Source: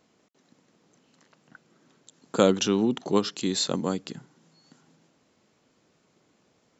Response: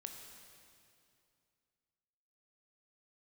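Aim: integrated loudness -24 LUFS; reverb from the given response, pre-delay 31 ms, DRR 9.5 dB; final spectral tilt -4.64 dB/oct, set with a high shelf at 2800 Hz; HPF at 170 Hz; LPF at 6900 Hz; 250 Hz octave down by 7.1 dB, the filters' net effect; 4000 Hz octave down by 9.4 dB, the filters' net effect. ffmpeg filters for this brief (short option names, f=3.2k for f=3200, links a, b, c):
-filter_complex "[0:a]highpass=170,lowpass=6.9k,equalizer=f=250:t=o:g=-8,highshelf=f=2.8k:g=-8,equalizer=f=4k:t=o:g=-5,asplit=2[a][b];[1:a]atrim=start_sample=2205,adelay=31[c];[b][c]afir=irnorm=-1:irlink=0,volume=-5.5dB[d];[a][d]amix=inputs=2:normalize=0,volume=5.5dB"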